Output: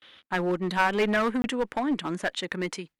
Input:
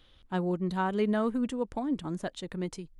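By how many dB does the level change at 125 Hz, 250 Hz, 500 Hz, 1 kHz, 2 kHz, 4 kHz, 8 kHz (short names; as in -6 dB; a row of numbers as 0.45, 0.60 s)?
-0.5 dB, +1.5 dB, +4.0 dB, +6.5 dB, +12.5 dB, +10.5 dB, n/a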